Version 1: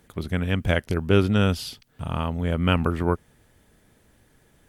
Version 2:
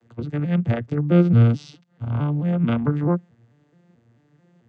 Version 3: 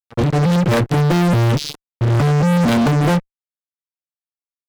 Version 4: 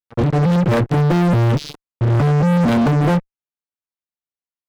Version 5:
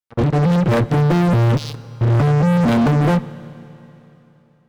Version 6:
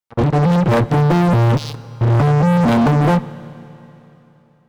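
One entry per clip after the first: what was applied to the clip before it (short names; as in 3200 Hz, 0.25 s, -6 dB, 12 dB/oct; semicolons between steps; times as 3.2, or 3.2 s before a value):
arpeggiated vocoder major triad, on A#2, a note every 0.219 s; gain +5.5 dB
fuzz box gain 37 dB, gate -43 dBFS
high shelf 2900 Hz -9 dB
Schroeder reverb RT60 3.3 s, combs from 26 ms, DRR 16.5 dB
bell 880 Hz +4 dB 0.8 oct; gain +1 dB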